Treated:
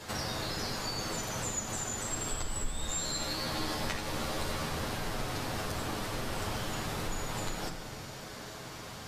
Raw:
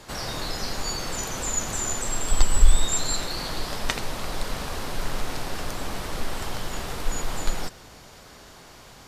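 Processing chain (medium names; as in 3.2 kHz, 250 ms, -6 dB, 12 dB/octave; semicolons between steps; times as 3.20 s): high-pass 64 Hz 6 dB/octave; compression 6:1, threshold -36 dBFS, peak gain reduction 18 dB; 2.56–4.69 s: doubling 13 ms -4.5 dB; reverberation RT60 0.90 s, pre-delay 9 ms, DRR -3 dB; trim -1.5 dB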